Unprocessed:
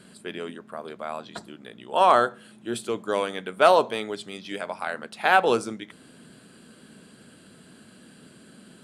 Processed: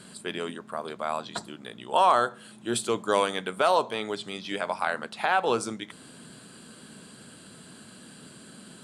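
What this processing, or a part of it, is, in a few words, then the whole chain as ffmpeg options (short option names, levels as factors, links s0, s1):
stacked limiters: -filter_complex "[0:a]alimiter=limit=0.335:level=0:latency=1:release=286,alimiter=limit=0.211:level=0:latency=1:release=478,asettb=1/sr,asplit=3[s0][s1][s2];[s0]atrim=end=3.934[s3];[s1]atrim=start=3.93:end=5.6,asetpts=PTS-STARTPTS,afade=t=in:d=0.004:c=qsin,afade=t=out:st=1.666:d=0.004:c=qsin,acrossover=split=4100[s4][s5];[s5]acompressor=threshold=0.00282:ratio=4:attack=1:release=60[s6];[s4][s6]amix=inputs=2:normalize=0[s7];[s2]atrim=start=5.596[s8];[s3][s7]acrossfade=d=0.004:c1=hsin:c2=qsin[s9];[s9][s8]acrossfade=d=0.004:c1=qsin:c2=hsin,equalizer=f=125:t=o:w=1:g=3,equalizer=f=1000:t=o:w=1:g=5,equalizer=f=4000:t=o:w=1:g=4,equalizer=f=8000:t=o:w=1:g=7"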